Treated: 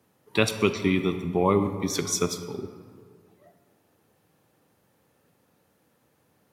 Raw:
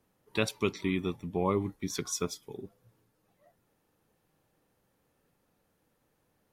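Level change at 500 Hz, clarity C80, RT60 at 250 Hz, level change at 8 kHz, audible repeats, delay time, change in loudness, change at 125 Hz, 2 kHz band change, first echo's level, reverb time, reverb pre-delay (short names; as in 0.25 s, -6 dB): +7.5 dB, 11.0 dB, 2.3 s, +7.5 dB, none, none, +7.0 dB, +7.0 dB, +7.5 dB, none, 2.0 s, 32 ms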